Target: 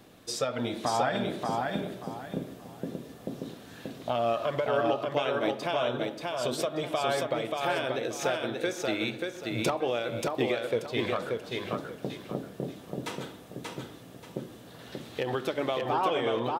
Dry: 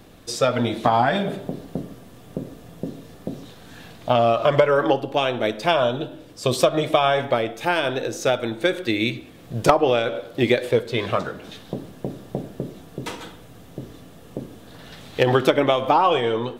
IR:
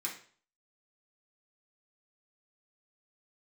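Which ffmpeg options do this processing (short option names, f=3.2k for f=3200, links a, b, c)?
-filter_complex "[0:a]highpass=f=140:p=1,alimiter=limit=-13dB:level=0:latency=1:release=406,asplit=2[a][b];[b]aecho=0:1:583|1166|1749|2332:0.708|0.198|0.0555|0.0155[c];[a][c]amix=inputs=2:normalize=0,volume=-5dB"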